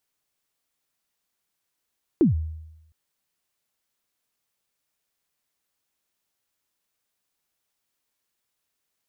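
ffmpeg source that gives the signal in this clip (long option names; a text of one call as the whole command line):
ffmpeg -f lavfi -i "aevalsrc='0.251*pow(10,-3*t/0.92)*sin(2*PI*(380*0.132/log(79/380)*(exp(log(79/380)*min(t,0.132)/0.132)-1)+79*max(t-0.132,0)))':duration=0.71:sample_rate=44100" out.wav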